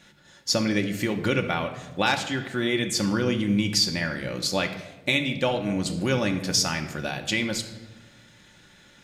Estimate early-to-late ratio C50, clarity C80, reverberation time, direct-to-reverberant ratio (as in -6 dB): 9.5 dB, 12.0 dB, 1.1 s, 4.5 dB